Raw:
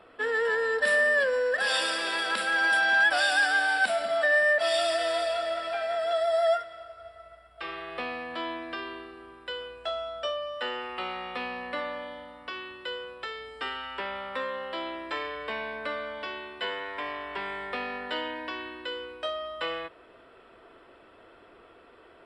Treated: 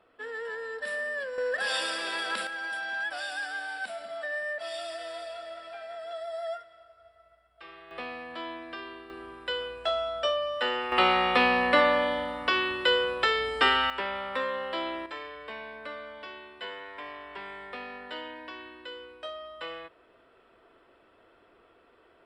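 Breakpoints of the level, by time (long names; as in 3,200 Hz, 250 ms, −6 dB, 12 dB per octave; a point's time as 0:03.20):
−10 dB
from 0:01.38 −3 dB
from 0:02.47 −11 dB
from 0:07.91 −4 dB
from 0:09.10 +4 dB
from 0:10.92 +12 dB
from 0:13.90 +2 dB
from 0:15.06 −6.5 dB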